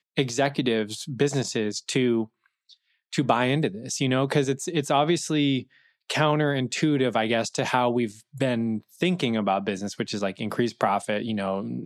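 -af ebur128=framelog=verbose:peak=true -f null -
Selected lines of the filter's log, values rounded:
Integrated loudness:
  I:         -25.3 LUFS
  Threshold: -35.6 LUFS
Loudness range:
  LRA:         2.4 LU
  Threshold: -45.4 LUFS
  LRA low:   -26.7 LUFS
  LRA high:  -24.3 LUFS
True peak:
  Peak:       -5.5 dBFS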